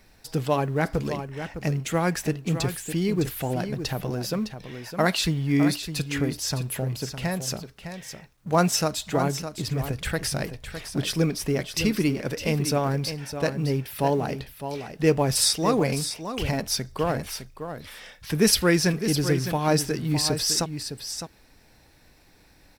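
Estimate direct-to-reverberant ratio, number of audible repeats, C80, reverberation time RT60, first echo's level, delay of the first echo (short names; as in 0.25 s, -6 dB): none, 1, none, none, -9.5 dB, 0.609 s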